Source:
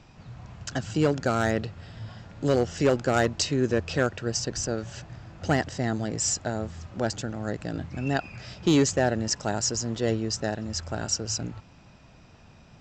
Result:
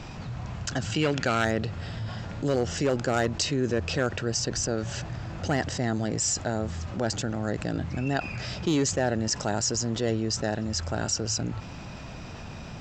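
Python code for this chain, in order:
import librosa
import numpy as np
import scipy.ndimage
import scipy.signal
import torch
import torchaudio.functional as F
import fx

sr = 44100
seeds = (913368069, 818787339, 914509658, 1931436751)

y = fx.peak_eq(x, sr, hz=2600.0, db=11.5, octaves=1.4, at=(0.92, 1.45))
y = fx.env_flatten(y, sr, amount_pct=50)
y = F.gain(torch.from_numpy(y), -4.5).numpy()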